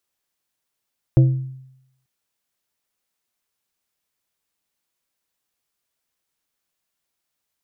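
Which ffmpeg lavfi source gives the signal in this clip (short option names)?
-f lavfi -i "aevalsrc='0.447*pow(10,-3*t/0.81)*sin(2*PI*131*t)+0.158*pow(10,-3*t/0.427)*sin(2*PI*327.5*t)+0.0562*pow(10,-3*t/0.307)*sin(2*PI*524*t)+0.02*pow(10,-3*t/0.263)*sin(2*PI*655*t)':d=0.89:s=44100"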